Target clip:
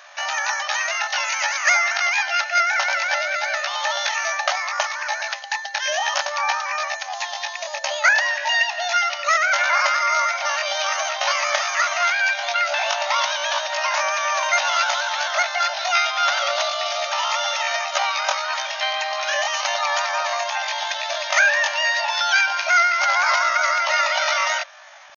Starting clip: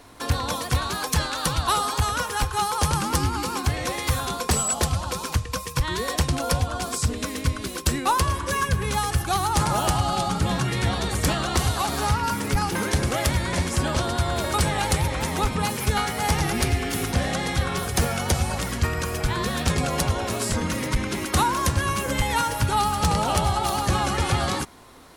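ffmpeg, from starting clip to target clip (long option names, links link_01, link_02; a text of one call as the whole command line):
ffmpeg -i in.wav -af "afftfilt=real='re*between(b*sr/4096,330,4000)':imag='im*between(b*sr/4096,330,4000)':win_size=4096:overlap=0.75,asetrate=74167,aresample=44100,atempo=0.594604,volume=6.5dB" out.wav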